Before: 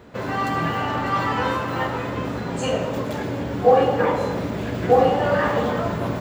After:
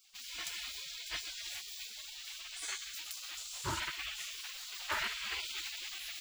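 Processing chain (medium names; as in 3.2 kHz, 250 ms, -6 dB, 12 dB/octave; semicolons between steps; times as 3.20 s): spectral gate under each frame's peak -30 dB weak; 3.37–3.80 s: ten-band graphic EQ 125 Hz +11 dB, 2 kHz -10 dB, 8 kHz +10 dB; trim +3.5 dB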